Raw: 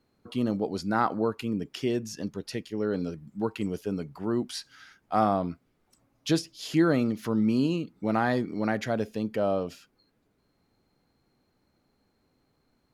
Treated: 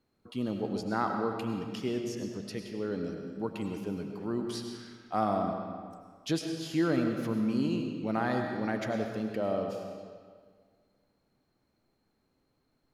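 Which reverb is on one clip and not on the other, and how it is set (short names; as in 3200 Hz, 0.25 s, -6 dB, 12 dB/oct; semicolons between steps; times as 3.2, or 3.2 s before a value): digital reverb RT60 1.8 s, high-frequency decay 0.8×, pre-delay 60 ms, DRR 3.5 dB; gain -5.5 dB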